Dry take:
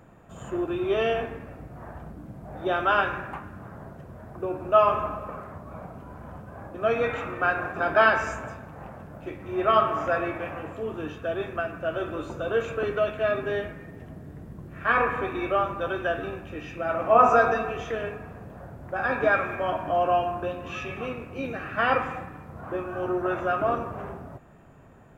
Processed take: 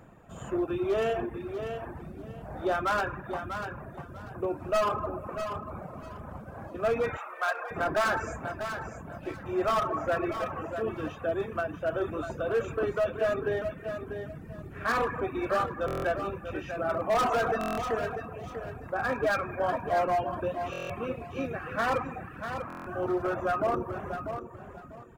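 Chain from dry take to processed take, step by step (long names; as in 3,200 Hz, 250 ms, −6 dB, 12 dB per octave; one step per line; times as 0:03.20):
hard clipping −21 dBFS, distortion −9 dB
dynamic equaliser 3,200 Hz, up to −7 dB, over −45 dBFS, Q 0.83
repeating echo 643 ms, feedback 24%, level −8 dB
reverb reduction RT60 0.69 s
0:07.17–0:07.71: high-pass filter 620 Hz 24 dB per octave
buffer that repeats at 0:15.86/0:17.59/0:20.71/0:22.68, samples 1,024, times 7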